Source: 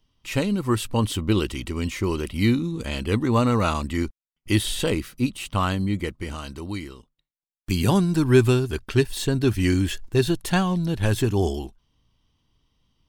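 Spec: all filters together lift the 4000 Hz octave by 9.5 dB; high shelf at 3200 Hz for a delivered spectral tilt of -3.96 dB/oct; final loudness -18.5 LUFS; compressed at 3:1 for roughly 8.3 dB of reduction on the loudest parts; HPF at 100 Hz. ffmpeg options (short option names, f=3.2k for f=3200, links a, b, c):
-af "highpass=100,highshelf=f=3.2k:g=8.5,equalizer=f=4k:t=o:g=6,acompressor=threshold=-21dB:ratio=3,volume=7dB"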